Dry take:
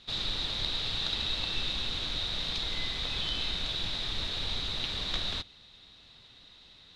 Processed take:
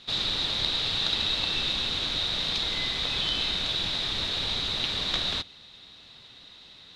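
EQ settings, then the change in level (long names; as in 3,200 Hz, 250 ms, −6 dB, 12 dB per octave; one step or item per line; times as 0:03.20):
low-shelf EQ 65 Hz −11.5 dB
+5.5 dB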